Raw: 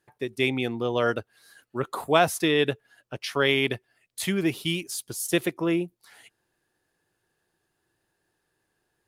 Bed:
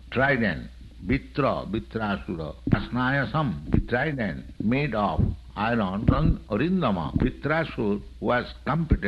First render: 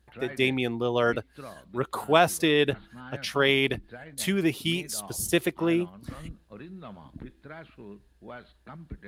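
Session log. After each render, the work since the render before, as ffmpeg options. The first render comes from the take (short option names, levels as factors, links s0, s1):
-filter_complex "[1:a]volume=0.106[s0];[0:a][s0]amix=inputs=2:normalize=0"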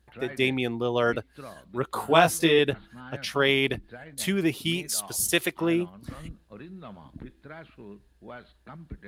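-filter_complex "[0:a]asettb=1/sr,asplit=3[s0][s1][s2];[s0]atrim=end=1.944[s3];[s1]atrim=start=1.94:end=2.59,asetpts=PTS-STARTPTS,afade=t=in:d=0.004:c=qsin,afade=t=out:st=0.646:d=0.004:c=qsin,asplit=2[s4][s5];[s5]adelay=18,volume=0.708[s6];[s4][s6]amix=inputs=2:normalize=0,atrim=end_sample=28665[s7];[s2]atrim=start=2.586[s8];[s3][s7]acrossfade=d=0.004:c1=hsin:c2=qsin[s9];[s9][s8]acrossfade=d=0.004:c1=qsin:c2=hsin,asettb=1/sr,asplit=3[s10][s11][s12];[s10]atrim=end=4.884[s13];[s11]atrim=start=4.88:end=5.61,asetpts=PTS-STARTPTS,afade=t=in:d=0.004:c=qsin,afade=t=out:st=0.726:d=0.004:c=qsin,tiltshelf=f=720:g=-5[s14];[s12]atrim=start=5.606[s15];[s13][s14]acrossfade=d=0.004:c1=hsin:c2=qsin[s16];[s16][s15]acrossfade=d=0.004:c1=qsin:c2=hsin"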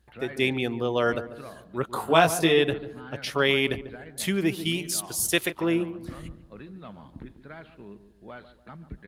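-filter_complex "[0:a]asplit=2[s0][s1];[s1]adelay=144,lowpass=f=980:p=1,volume=0.266,asplit=2[s2][s3];[s3]adelay=144,lowpass=f=980:p=1,volume=0.47,asplit=2[s4][s5];[s5]adelay=144,lowpass=f=980:p=1,volume=0.47,asplit=2[s6][s7];[s7]adelay=144,lowpass=f=980:p=1,volume=0.47,asplit=2[s8][s9];[s9]adelay=144,lowpass=f=980:p=1,volume=0.47[s10];[s0][s2][s4][s6][s8][s10]amix=inputs=6:normalize=0"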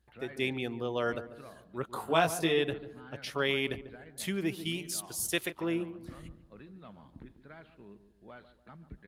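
-af "volume=0.422"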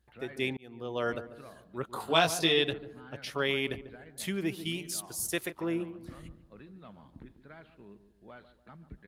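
-filter_complex "[0:a]asettb=1/sr,asplit=3[s0][s1][s2];[s0]atrim=end=2.004[s3];[s1]atrim=start=2:end=2.73,asetpts=PTS-STARTPTS,afade=t=in:d=0.004:c=qsin,afade=t=out:st=0.726:d=0.004:c=qsin,equalizer=f=4300:w=1.1:g=11[s4];[s2]atrim=start=2.726[s5];[s3][s4]acrossfade=d=0.004:c1=hsin:c2=qsin[s6];[s6][s5]acrossfade=d=0.004:c1=qsin:c2=hsin,asettb=1/sr,asplit=3[s7][s8][s9];[s7]atrim=end=5.024[s10];[s8]atrim=start=5.02:end=5.8,asetpts=PTS-STARTPTS,afade=t=in:d=0.004:c=qsin,afade=t=out:st=0.776:d=0.004:c=qsin,equalizer=f=3100:t=o:w=0.77:g=-5.5[s11];[s9]atrim=start=5.796[s12];[s10][s11]acrossfade=d=0.004:c1=hsin:c2=qsin[s13];[s13][s12]acrossfade=d=0.004:c1=qsin:c2=hsin,asplit=2[s14][s15];[s14]atrim=end=0.57,asetpts=PTS-STARTPTS,afade=t=out:st=0.566:d=0.004:c=hsin[s16];[s15]atrim=start=0.57,asetpts=PTS-STARTPTS,afade=t=in:d=0.46[s17];[s16][s17]concat=n=2:v=0:a=1"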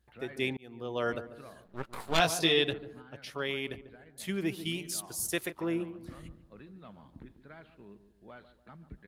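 -filter_complex "[0:a]asettb=1/sr,asplit=3[s0][s1][s2];[s0]atrim=end=1.664[s3];[s1]atrim=start=1.66:end=2.2,asetpts=PTS-STARTPTS,afade=t=in:d=0.004:c=qsin,afade=t=out:st=0.536:d=0.004:c=qsin,aeval=exprs='max(val(0),0)':c=same[s4];[s2]atrim=start=2.196[s5];[s3][s4]acrossfade=d=0.004:c1=hsin:c2=qsin[s6];[s6][s5]acrossfade=d=0.004:c1=qsin:c2=hsin,asplit=3[s7][s8][s9];[s7]atrim=end=3.022[s10];[s8]atrim=start=3.018:end=4.292,asetpts=PTS-STARTPTS,volume=0.596[s11];[s9]atrim=start=4.288[s12];[s10][s11]acrossfade=d=0.004:c1=hsin:c2=hsin[s13];[s13][s12]acrossfade=d=0.004:c1=hsin:c2=hsin"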